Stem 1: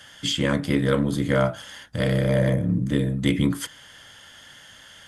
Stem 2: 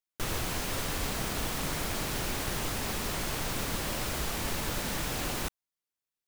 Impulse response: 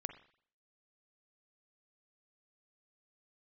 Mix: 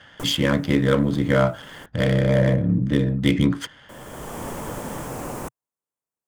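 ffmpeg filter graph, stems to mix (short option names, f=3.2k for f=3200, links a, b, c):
-filter_complex "[0:a]adynamicsmooth=sensitivity=6:basefreq=2.1k,volume=2.5dB,asplit=2[a][b];[1:a]equalizer=f=125:t=o:w=1:g=8,equalizer=f=250:t=o:w=1:g=7,equalizer=f=500:t=o:w=1:g=9,equalizer=f=1k:t=o:w=1:g=9,equalizer=f=4k:t=o:w=1:g=-11,equalizer=f=8k:t=o:w=1:g=6,volume=-5dB,asplit=3[c][d][e];[c]atrim=end=1.86,asetpts=PTS-STARTPTS,afade=t=out:st=1.856:d=0.004:c=hsin[f];[d]atrim=start=1.86:end=3.89,asetpts=PTS-STARTPTS,volume=0[g];[e]atrim=start=3.89,asetpts=PTS-STARTPTS,afade=t=in:d=0.004:c=hsin[h];[f][g][h]concat=n=3:v=0:a=1[i];[b]apad=whole_len=276883[j];[i][j]sidechaincompress=threshold=-39dB:ratio=5:attack=16:release=520[k];[a][k]amix=inputs=2:normalize=0"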